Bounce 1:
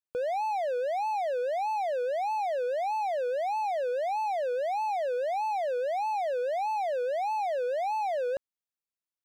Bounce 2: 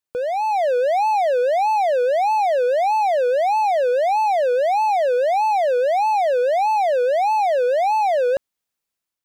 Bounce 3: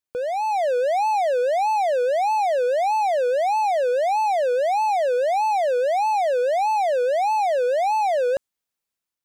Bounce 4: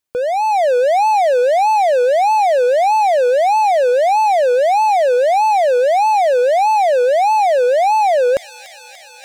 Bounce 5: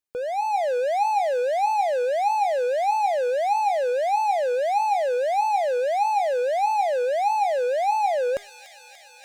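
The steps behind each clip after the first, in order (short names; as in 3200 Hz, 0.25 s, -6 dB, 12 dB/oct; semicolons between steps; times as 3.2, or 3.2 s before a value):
AGC gain up to 5 dB; gain +6.5 dB
dynamic EQ 8100 Hz, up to +6 dB, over -53 dBFS, Q 1.1; gain -2.5 dB
thin delay 0.292 s, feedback 60%, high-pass 3100 Hz, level -13 dB; reverse; upward compressor, threshold -32 dBFS; reverse; gain +7.5 dB
resonator 410 Hz, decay 0.38 s, harmonics all, mix 70%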